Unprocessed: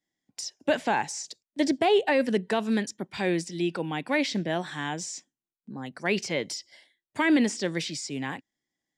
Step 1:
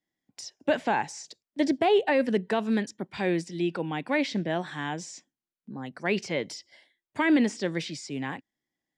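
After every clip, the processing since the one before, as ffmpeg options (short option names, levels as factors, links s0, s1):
-af "highshelf=f=4900:g=-9.5"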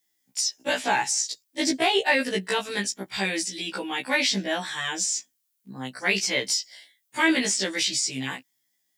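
-af "crystalizer=i=9.5:c=0,afftfilt=real='re*1.73*eq(mod(b,3),0)':imag='im*1.73*eq(mod(b,3),0)':win_size=2048:overlap=0.75"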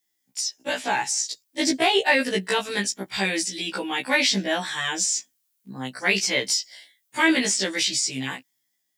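-af "dynaudnorm=f=820:g=3:m=1.78,volume=0.794"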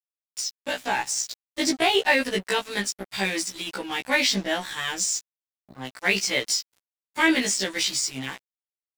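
-af "aeval=exprs='sgn(val(0))*max(abs(val(0))-0.015,0)':c=same"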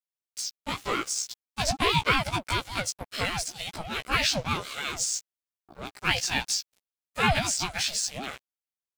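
-af "asuperstop=centerf=1400:order=4:qfactor=4.1,aeval=exprs='val(0)*sin(2*PI*430*n/s+430*0.3/5.1*sin(2*PI*5.1*n/s))':c=same"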